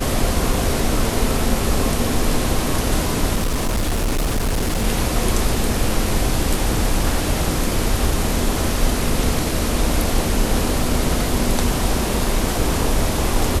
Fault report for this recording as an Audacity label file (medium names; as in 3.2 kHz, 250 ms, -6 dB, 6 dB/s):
3.350000	4.850000	clipped -16 dBFS